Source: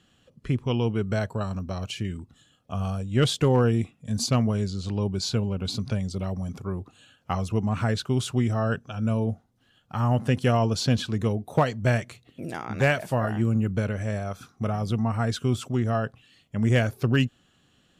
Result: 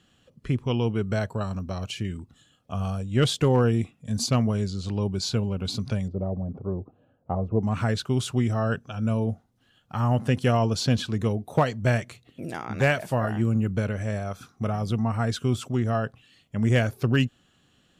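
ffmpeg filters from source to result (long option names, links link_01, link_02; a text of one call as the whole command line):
ffmpeg -i in.wav -filter_complex "[0:a]asettb=1/sr,asplit=3[link_01][link_02][link_03];[link_01]atrim=end=6.084[link_04];[link_02]atrim=start=6.08:end=7.63,asetpts=PTS-STARTPTS,afade=type=in:duration=0.004:curve=qsin,afade=type=out:start_time=1.546:duration=0.004:curve=qsin,lowpass=frequency=610:width_type=q:width=1.6[link_05];[link_03]atrim=start=7.626[link_06];[link_04][link_05]acrossfade=duration=0.004:curve1=hsin:curve2=qsin[link_07];[link_07][link_06]acrossfade=duration=0.004:curve1=qsin:curve2=hsin" out.wav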